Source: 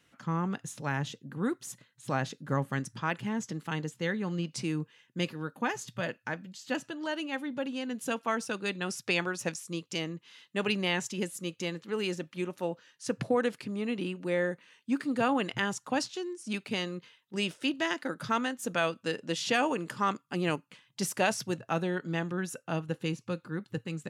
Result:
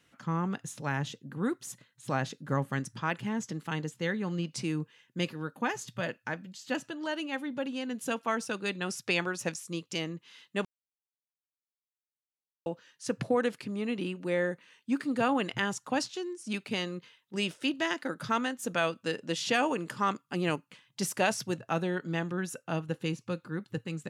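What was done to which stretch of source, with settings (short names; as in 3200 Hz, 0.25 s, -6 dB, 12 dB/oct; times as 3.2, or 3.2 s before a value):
10.65–12.66 mute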